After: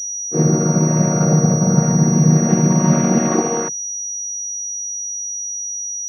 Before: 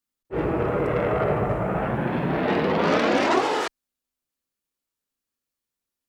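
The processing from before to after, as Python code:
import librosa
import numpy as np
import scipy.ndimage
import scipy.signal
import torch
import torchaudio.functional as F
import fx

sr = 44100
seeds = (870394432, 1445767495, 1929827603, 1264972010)

p1 = fx.chord_vocoder(x, sr, chord='minor triad', root=51)
p2 = fx.rider(p1, sr, range_db=4, speed_s=0.5)
p3 = p1 + (p2 * librosa.db_to_amplitude(0.5))
p4 = fx.peak_eq(p3, sr, hz=130.0, db=13.5, octaves=0.9)
p5 = fx.pwm(p4, sr, carrier_hz=5800.0)
y = p5 * librosa.db_to_amplitude(-2.0)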